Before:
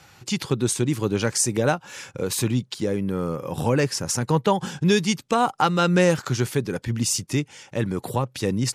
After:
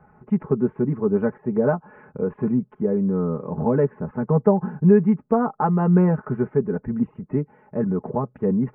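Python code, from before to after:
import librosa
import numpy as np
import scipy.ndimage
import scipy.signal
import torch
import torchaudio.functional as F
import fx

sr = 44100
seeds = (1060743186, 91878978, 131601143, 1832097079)

y = scipy.ndimage.gaussian_filter1d(x, 7.2, mode='constant')
y = y + 0.83 * np.pad(y, (int(4.7 * sr / 1000.0), 0))[:len(y)]
y = y * librosa.db_to_amplitude(1.0)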